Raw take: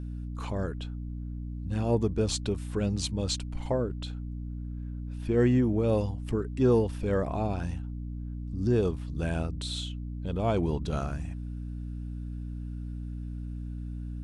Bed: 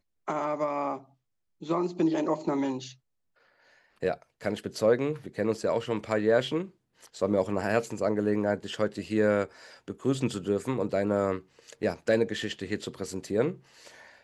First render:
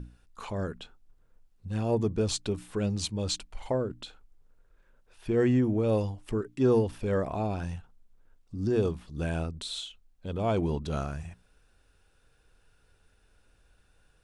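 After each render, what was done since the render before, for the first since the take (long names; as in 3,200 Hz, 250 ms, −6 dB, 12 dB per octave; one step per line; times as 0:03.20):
mains-hum notches 60/120/180/240/300 Hz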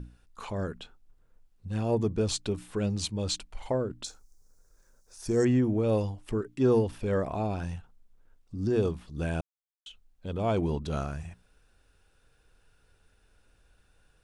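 0:04.04–0:05.45: high shelf with overshoot 4,200 Hz +12.5 dB, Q 3
0:09.41–0:09.86: silence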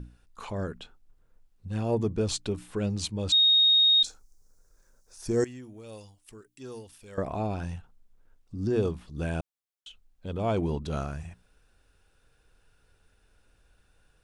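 0:03.32–0:04.03: beep over 3,730 Hz −17 dBFS
0:05.44–0:07.18: first-order pre-emphasis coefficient 0.9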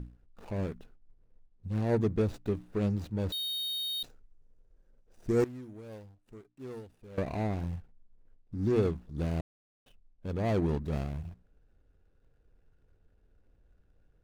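running median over 41 samples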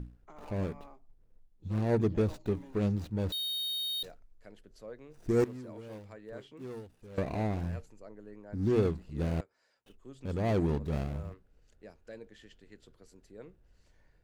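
mix in bed −23 dB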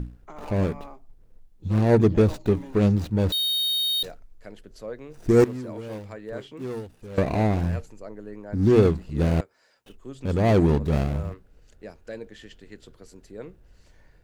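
level +10 dB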